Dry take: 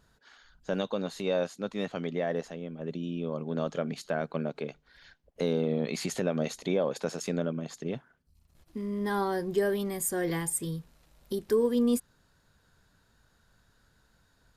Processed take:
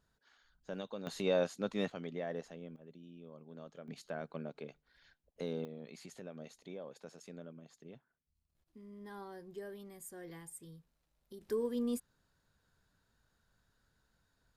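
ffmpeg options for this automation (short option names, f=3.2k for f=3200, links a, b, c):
-af "asetnsamples=n=441:p=0,asendcmd='1.07 volume volume -2.5dB;1.9 volume volume -9.5dB;2.76 volume volume -19.5dB;3.88 volume volume -11dB;5.65 volume volume -19dB;11.41 volume volume -10dB',volume=-12dB"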